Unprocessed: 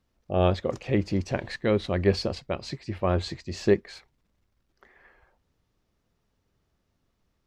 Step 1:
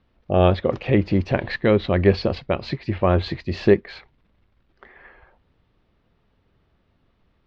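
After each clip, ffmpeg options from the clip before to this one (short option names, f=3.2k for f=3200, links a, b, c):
-filter_complex "[0:a]lowpass=f=3.8k:w=0.5412,lowpass=f=3.8k:w=1.3066,asplit=2[a][b];[b]acompressor=threshold=-29dB:ratio=6,volume=-1.5dB[c];[a][c]amix=inputs=2:normalize=0,volume=4dB"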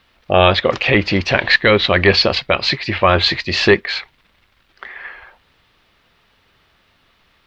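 -af "tiltshelf=f=820:g=-10,apsyclip=11.5dB,volume=-1.5dB"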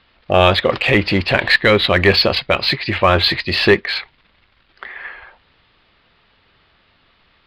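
-filter_complex "[0:a]aresample=11025,aresample=44100,asplit=2[a][b];[b]asoftclip=type=hard:threshold=-18dB,volume=-11.5dB[c];[a][c]amix=inputs=2:normalize=0,volume=-1dB"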